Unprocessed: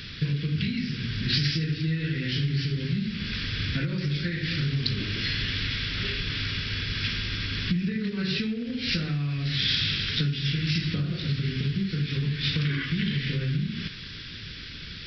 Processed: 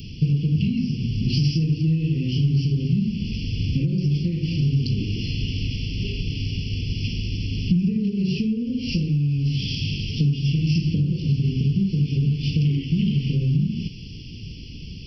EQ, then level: Chebyshev band-stop 530–2800 Hz, order 4; static phaser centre 1.6 kHz, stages 4; +8.0 dB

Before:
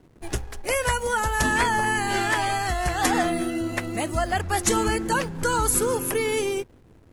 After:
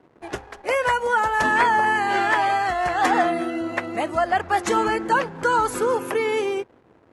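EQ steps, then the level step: band-pass filter 920 Hz, Q 0.63; +5.5 dB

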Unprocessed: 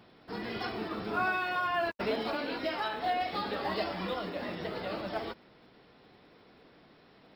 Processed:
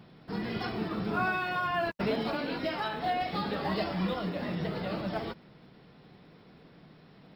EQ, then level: bass shelf 89 Hz +6 dB; peaking EQ 160 Hz +11 dB 0.82 oct; 0.0 dB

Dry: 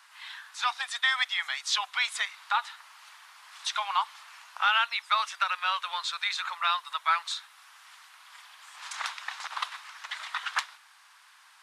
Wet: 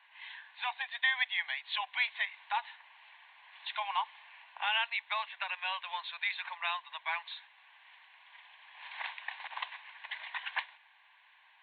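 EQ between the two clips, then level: high-pass 380 Hz; brick-wall FIR low-pass 4.7 kHz; static phaser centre 1.3 kHz, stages 6; -1.5 dB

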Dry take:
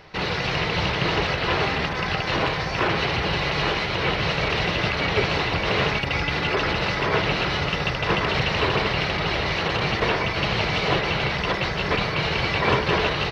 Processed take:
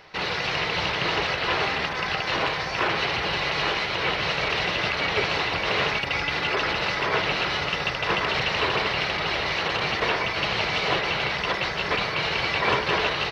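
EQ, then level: bass shelf 330 Hz -10 dB; 0.0 dB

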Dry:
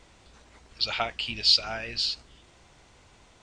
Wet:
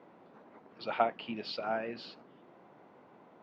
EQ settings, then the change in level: high-pass 180 Hz 24 dB/octave; low-pass 1 kHz 12 dB/octave; +4.0 dB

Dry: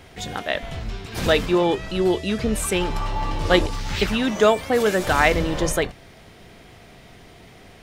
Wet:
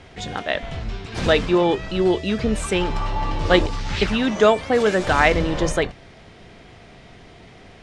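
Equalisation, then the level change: low-pass 10 kHz 24 dB/octave; distance through air 53 m; +1.5 dB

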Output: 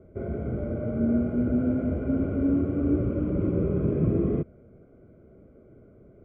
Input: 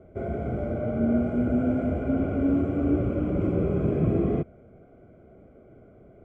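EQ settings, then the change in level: peaking EQ 730 Hz -10.5 dB 0.32 oct; treble shelf 2 kHz -11.5 dB; 0.0 dB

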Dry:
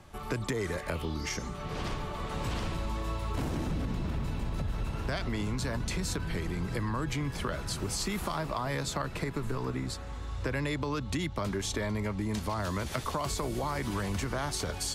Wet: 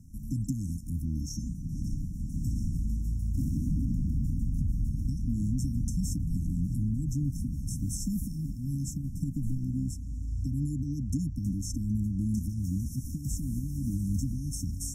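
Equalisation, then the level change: brick-wall FIR band-stop 300–5300 Hz; peaking EQ 5.1 kHz -7 dB 3 oct; +4.5 dB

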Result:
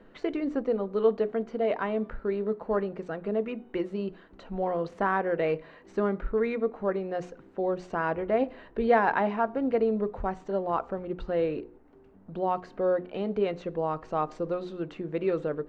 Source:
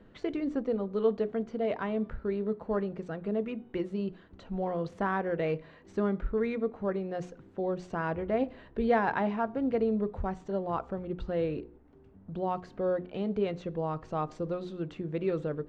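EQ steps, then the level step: peaking EQ 90 Hz -12.5 dB 2.3 oct; treble shelf 3.9 kHz -7 dB; band-stop 3.4 kHz, Q 22; +5.5 dB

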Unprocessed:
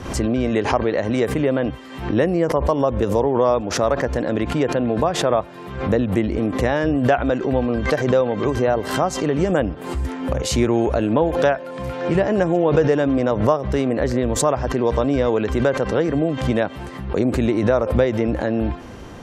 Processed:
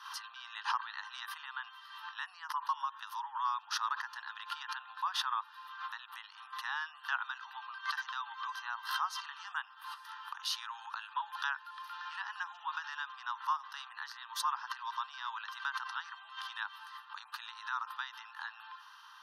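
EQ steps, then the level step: steep high-pass 890 Hz 72 dB/octave; static phaser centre 2.2 kHz, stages 6; -6.5 dB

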